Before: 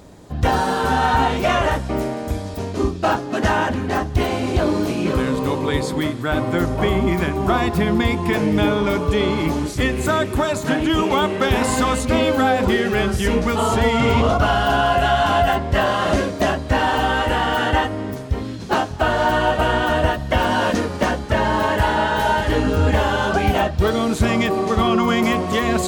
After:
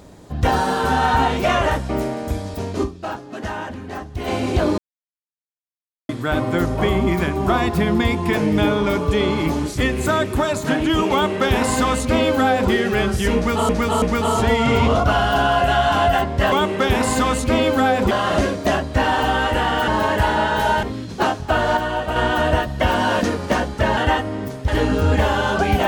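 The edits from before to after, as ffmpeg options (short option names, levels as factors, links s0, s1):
-filter_complex "[0:a]asplit=15[s0][s1][s2][s3][s4][s5][s6][s7][s8][s9][s10][s11][s12][s13][s14];[s0]atrim=end=3.03,asetpts=PTS-STARTPTS,afade=t=out:st=2.83:d=0.2:c=exp:silence=0.334965[s15];[s1]atrim=start=3.03:end=4.08,asetpts=PTS-STARTPTS,volume=0.335[s16];[s2]atrim=start=4.08:end=4.78,asetpts=PTS-STARTPTS,afade=t=in:d=0.2:c=exp:silence=0.334965,afade=t=out:st=0.696:d=0.004:c=hsin[s17];[s3]atrim=start=4.78:end=6.09,asetpts=PTS-STARTPTS,volume=0[s18];[s4]atrim=start=6.09:end=13.692,asetpts=PTS-STARTPTS,afade=t=in:d=0.004:c=hsin[s19];[s5]atrim=start=13.358:end=13.692[s20];[s6]atrim=start=13.358:end=15.862[s21];[s7]atrim=start=11.128:end=12.722[s22];[s8]atrim=start=15.858:end=17.632[s23];[s9]atrim=start=21.478:end=22.432[s24];[s10]atrim=start=18.338:end=19.282[s25];[s11]atrim=start=19.278:end=19.672,asetpts=PTS-STARTPTS,volume=0.562[s26];[s12]atrim=start=19.668:end=21.482[s27];[s13]atrim=start=17.628:end=18.342[s28];[s14]atrim=start=22.428[s29];[s15][s16][s17][s18][s19]concat=n=5:v=0:a=1[s30];[s30][s20]acrossfade=d=0.004:c1=hsin:c2=hsin[s31];[s31][s21]acrossfade=d=0.004:c1=hsin:c2=hsin[s32];[s32][s22]acrossfade=d=0.004:c1=hsin:c2=hsin[s33];[s33][s23]acrossfade=d=0.004:c1=hsin:c2=hsin[s34];[s34][s24]acrossfade=d=0.004:c1=hsin:c2=hsin[s35];[s35][s25]acrossfade=d=0.004:c1=hsin:c2=hsin[s36];[s36][s26]acrossfade=d=0.004:c1=hsin:c2=hsin[s37];[s37][s27]acrossfade=d=0.004:c1=hsin:c2=hsin[s38];[s38][s28]acrossfade=d=0.004:c1=hsin:c2=hsin[s39];[s39][s29]acrossfade=d=0.004:c1=hsin:c2=hsin"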